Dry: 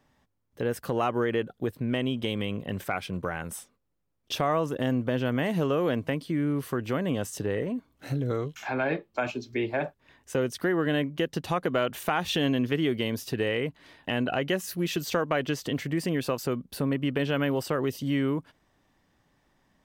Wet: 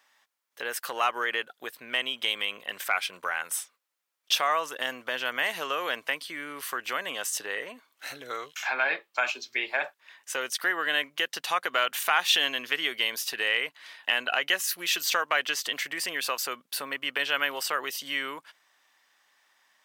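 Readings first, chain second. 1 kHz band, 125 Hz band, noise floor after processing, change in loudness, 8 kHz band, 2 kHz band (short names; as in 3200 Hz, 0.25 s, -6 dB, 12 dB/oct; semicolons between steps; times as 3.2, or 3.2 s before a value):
+2.5 dB, under -25 dB, -78 dBFS, +1.0 dB, +8.5 dB, +7.5 dB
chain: HPF 1300 Hz 12 dB/oct; gain +8.5 dB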